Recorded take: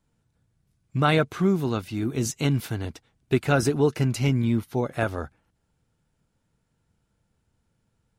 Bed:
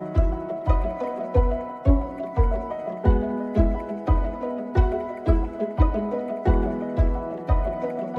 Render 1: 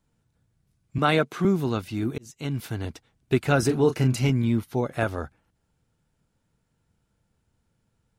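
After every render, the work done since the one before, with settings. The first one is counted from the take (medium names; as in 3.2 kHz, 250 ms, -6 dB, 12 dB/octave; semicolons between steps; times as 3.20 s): 0.98–1.45 s: high-pass 160 Hz 24 dB/octave; 2.18–2.84 s: fade in linear; 3.66–4.30 s: doubling 31 ms -8 dB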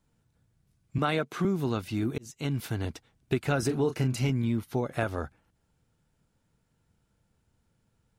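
compression 3:1, threshold -25 dBFS, peak gain reduction 7.5 dB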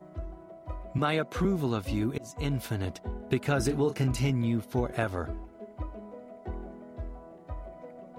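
add bed -18 dB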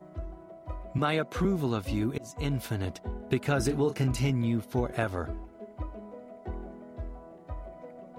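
no audible change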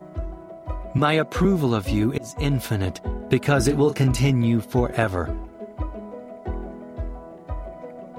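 trim +8 dB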